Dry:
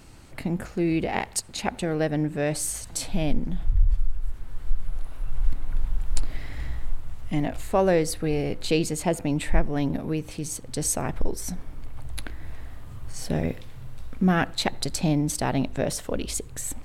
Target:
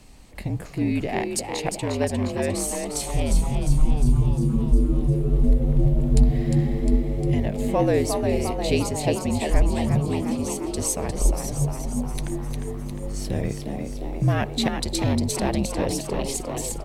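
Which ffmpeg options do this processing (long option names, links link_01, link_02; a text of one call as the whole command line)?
ffmpeg -i in.wav -filter_complex "[0:a]afreqshift=-55,equalizer=frequency=1400:width_type=o:width=0.35:gain=-9.5,asplit=9[link_01][link_02][link_03][link_04][link_05][link_06][link_07][link_08][link_09];[link_02]adelay=354,afreqshift=100,volume=-6dB[link_10];[link_03]adelay=708,afreqshift=200,volume=-10.3dB[link_11];[link_04]adelay=1062,afreqshift=300,volume=-14.6dB[link_12];[link_05]adelay=1416,afreqshift=400,volume=-18.9dB[link_13];[link_06]adelay=1770,afreqshift=500,volume=-23.2dB[link_14];[link_07]adelay=2124,afreqshift=600,volume=-27.5dB[link_15];[link_08]adelay=2478,afreqshift=700,volume=-31.8dB[link_16];[link_09]adelay=2832,afreqshift=800,volume=-36.1dB[link_17];[link_01][link_10][link_11][link_12][link_13][link_14][link_15][link_16][link_17]amix=inputs=9:normalize=0" out.wav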